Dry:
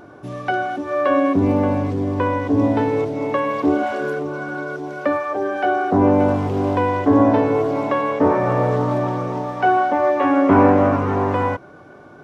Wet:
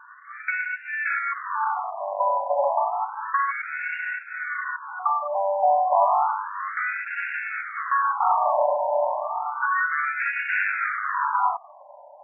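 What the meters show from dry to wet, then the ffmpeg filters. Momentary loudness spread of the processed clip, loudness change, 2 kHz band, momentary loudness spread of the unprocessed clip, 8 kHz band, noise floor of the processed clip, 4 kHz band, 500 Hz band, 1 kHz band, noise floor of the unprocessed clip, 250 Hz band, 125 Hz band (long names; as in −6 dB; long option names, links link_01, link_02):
9 LU, −6.0 dB, +2.5 dB, 10 LU, can't be measured, −47 dBFS, below −15 dB, −9.5 dB, −1.5 dB, −43 dBFS, below −40 dB, below −40 dB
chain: -af "aeval=exprs='max(val(0),0)':channel_layout=same,afftfilt=real='re*between(b*sr/1024,730*pow(2000/730,0.5+0.5*sin(2*PI*0.31*pts/sr))/1.41,730*pow(2000/730,0.5+0.5*sin(2*PI*0.31*pts/sr))*1.41)':imag='im*between(b*sr/1024,730*pow(2000/730,0.5+0.5*sin(2*PI*0.31*pts/sr))/1.41,730*pow(2000/730,0.5+0.5*sin(2*PI*0.31*pts/sr))*1.41)':win_size=1024:overlap=0.75,volume=7dB"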